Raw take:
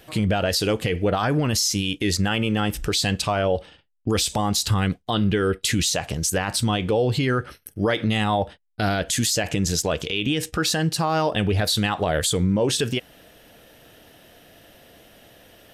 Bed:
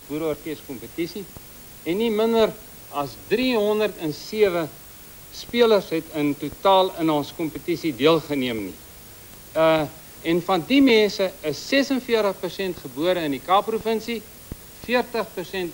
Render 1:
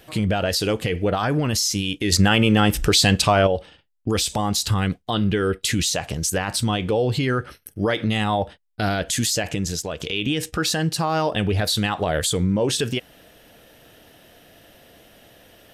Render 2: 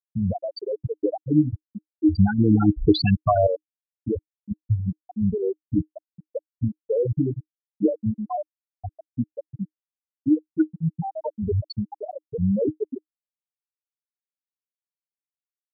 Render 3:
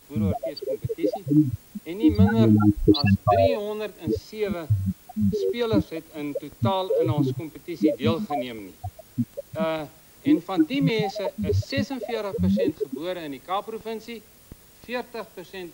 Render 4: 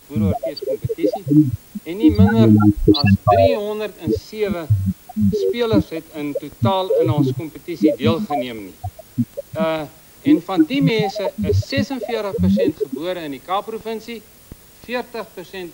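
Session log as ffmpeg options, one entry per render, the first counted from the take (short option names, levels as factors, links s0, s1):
-filter_complex "[0:a]asplit=4[s0][s1][s2][s3];[s0]atrim=end=2.122[s4];[s1]atrim=start=2.118:end=3.472,asetpts=PTS-STARTPTS,volume=2[s5];[s2]atrim=start=3.468:end=10,asetpts=PTS-STARTPTS,afade=t=out:st=5.882:d=0.65:silence=0.421697[s6];[s3]atrim=start=10,asetpts=PTS-STARTPTS,afade=t=in:d=0.004:c=hsin:silence=0.421697[s7];[s4][s5]acrossfade=d=0.004:c1=hsin:c2=hsin[s8];[s6][s7]concat=n=2:v=0:a=1[s9];[s8][s9]acrossfade=d=0.004:c1=hsin:c2=hsin"
-af "afftfilt=real='re*gte(hypot(re,im),0.631)':imag='im*gte(hypot(re,im),0.631)':win_size=1024:overlap=0.75,equalizer=f=310:t=o:w=0.21:g=13"
-filter_complex "[1:a]volume=0.355[s0];[0:a][s0]amix=inputs=2:normalize=0"
-af "volume=2,alimiter=limit=0.891:level=0:latency=1"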